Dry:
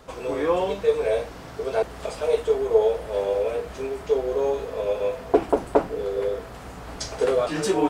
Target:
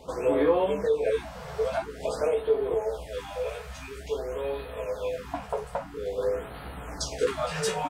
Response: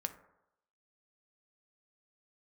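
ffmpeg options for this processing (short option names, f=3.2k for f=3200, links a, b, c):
-filter_complex "[0:a]asetnsamples=n=441:p=0,asendcmd='2.74 equalizer g -10;5.12 equalizer g -3',equalizer=f=400:t=o:w=2.6:g=3.5,alimiter=limit=-15.5dB:level=0:latency=1:release=481,asplit=2[a][b];[b]adelay=14,volume=-5dB[c];[a][c]amix=inputs=2:normalize=0[d];[1:a]atrim=start_sample=2205,atrim=end_sample=3969[e];[d][e]afir=irnorm=-1:irlink=0,afftfilt=real='re*(1-between(b*sr/1024,270*pow(6700/270,0.5+0.5*sin(2*PI*0.49*pts/sr))/1.41,270*pow(6700/270,0.5+0.5*sin(2*PI*0.49*pts/sr))*1.41))':imag='im*(1-between(b*sr/1024,270*pow(6700/270,0.5+0.5*sin(2*PI*0.49*pts/sr))/1.41,270*pow(6700/270,0.5+0.5*sin(2*PI*0.49*pts/sr))*1.41))':win_size=1024:overlap=0.75"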